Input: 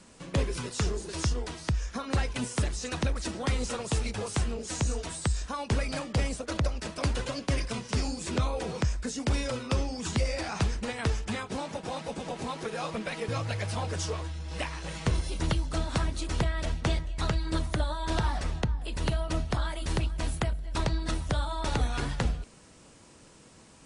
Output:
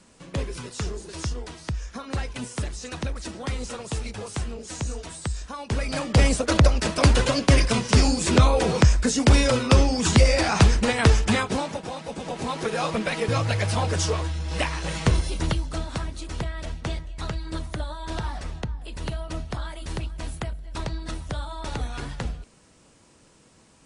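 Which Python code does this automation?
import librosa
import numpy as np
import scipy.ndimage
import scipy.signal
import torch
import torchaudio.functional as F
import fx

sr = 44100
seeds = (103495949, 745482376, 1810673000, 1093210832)

y = fx.gain(x, sr, db=fx.line((5.63, -1.0), (6.26, 11.5), (11.4, 11.5), (11.97, 0.5), (12.68, 8.0), (14.99, 8.0), (16.04, -2.0)))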